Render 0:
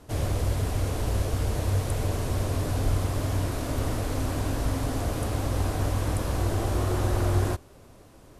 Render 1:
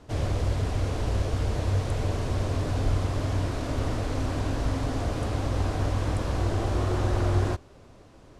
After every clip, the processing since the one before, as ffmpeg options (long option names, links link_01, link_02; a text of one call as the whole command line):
ffmpeg -i in.wav -af "lowpass=6200" out.wav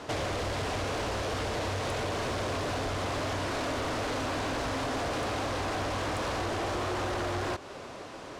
ffmpeg -i in.wav -filter_complex "[0:a]asplit=2[link_01][link_02];[link_02]highpass=frequency=720:poles=1,volume=28dB,asoftclip=type=tanh:threshold=-11.5dB[link_03];[link_01][link_03]amix=inputs=2:normalize=0,lowpass=frequency=5100:poles=1,volume=-6dB,acompressor=threshold=-24dB:ratio=6,volume=-6dB" out.wav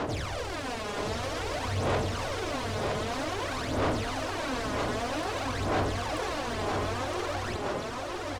ffmpeg -i in.wav -af "alimiter=level_in=10dB:limit=-24dB:level=0:latency=1,volume=-10dB,aphaser=in_gain=1:out_gain=1:delay=4.9:decay=0.71:speed=0.52:type=sinusoidal,aecho=1:1:966:0.631,volume=2.5dB" out.wav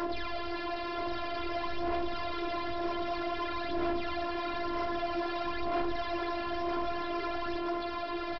ffmpeg -i in.wav -af "afftfilt=real='hypot(re,im)*cos(PI*b)':imag='0':win_size=512:overlap=0.75,flanger=delay=9.3:depth=3.1:regen=-64:speed=0.85:shape=triangular,aresample=11025,asoftclip=type=hard:threshold=-31.5dB,aresample=44100,volume=7dB" out.wav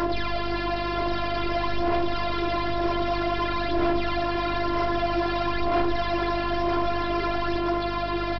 ffmpeg -i in.wav -af "aeval=exprs='val(0)+0.00794*(sin(2*PI*50*n/s)+sin(2*PI*2*50*n/s)/2+sin(2*PI*3*50*n/s)/3+sin(2*PI*4*50*n/s)/4+sin(2*PI*5*50*n/s)/5)':channel_layout=same,volume=8dB" out.wav